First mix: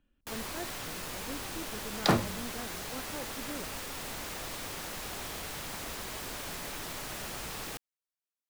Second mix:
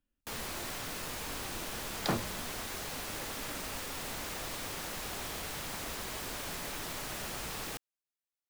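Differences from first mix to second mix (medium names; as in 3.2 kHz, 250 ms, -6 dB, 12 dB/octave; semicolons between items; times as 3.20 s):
speech -11.5 dB; second sound -7.0 dB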